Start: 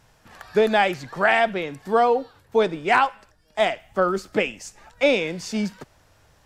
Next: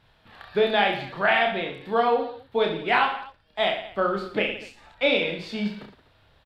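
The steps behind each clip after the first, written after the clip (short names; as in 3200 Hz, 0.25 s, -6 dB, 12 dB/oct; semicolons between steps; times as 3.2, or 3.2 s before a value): resonant high shelf 4900 Hz -9.5 dB, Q 3; on a send: reverse bouncing-ball echo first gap 30 ms, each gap 1.25×, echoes 5; on the sum: gain -5 dB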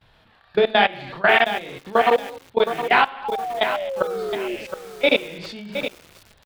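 level quantiser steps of 21 dB; painted sound fall, 3.24–4.56, 350–860 Hz -34 dBFS; lo-fi delay 0.717 s, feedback 35%, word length 7-bit, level -9 dB; gain +6.5 dB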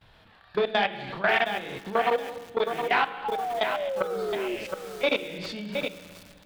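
compressor 1.5:1, threshold -31 dBFS, peak gain reduction 7 dB; reverb RT60 1.9 s, pre-delay 5 ms, DRR 15 dB; core saturation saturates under 900 Hz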